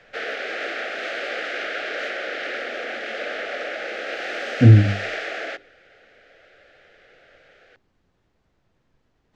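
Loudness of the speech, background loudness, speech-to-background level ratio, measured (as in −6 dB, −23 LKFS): −15.0 LKFS, −28.5 LKFS, 13.5 dB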